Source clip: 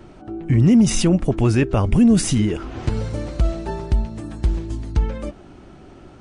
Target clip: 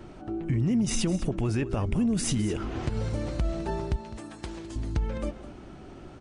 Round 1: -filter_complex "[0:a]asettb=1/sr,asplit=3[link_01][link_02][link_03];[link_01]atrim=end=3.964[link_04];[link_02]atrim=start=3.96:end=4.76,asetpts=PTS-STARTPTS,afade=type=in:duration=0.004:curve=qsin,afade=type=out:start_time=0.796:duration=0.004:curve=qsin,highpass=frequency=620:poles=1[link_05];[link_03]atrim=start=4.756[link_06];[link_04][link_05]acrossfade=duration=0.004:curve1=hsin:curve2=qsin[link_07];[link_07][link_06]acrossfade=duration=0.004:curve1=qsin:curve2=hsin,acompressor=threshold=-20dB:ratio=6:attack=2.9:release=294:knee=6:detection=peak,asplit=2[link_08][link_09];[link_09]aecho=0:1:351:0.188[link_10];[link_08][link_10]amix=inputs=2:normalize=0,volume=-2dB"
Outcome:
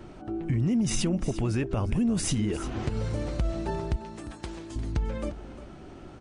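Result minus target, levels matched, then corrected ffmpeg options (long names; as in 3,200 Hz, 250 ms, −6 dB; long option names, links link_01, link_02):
echo 144 ms late
-filter_complex "[0:a]asettb=1/sr,asplit=3[link_01][link_02][link_03];[link_01]atrim=end=3.964[link_04];[link_02]atrim=start=3.96:end=4.76,asetpts=PTS-STARTPTS,afade=type=in:duration=0.004:curve=qsin,afade=type=out:start_time=0.796:duration=0.004:curve=qsin,highpass=frequency=620:poles=1[link_05];[link_03]atrim=start=4.756[link_06];[link_04][link_05]acrossfade=duration=0.004:curve1=hsin:curve2=qsin[link_07];[link_07][link_06]acrossfade=duration=0.004:curve1=qsin:curve2=hsin,acompressor=threshold=-20dB:ratio=6:attack=2.9:release=294:knee=6:detection=peak,asplit=2[link_08][link_09];[link_09]aecho=0:1:207:0.188[link_10];[link_08][link_10]amix=inputs=2:normalize=0,volume=-2dB"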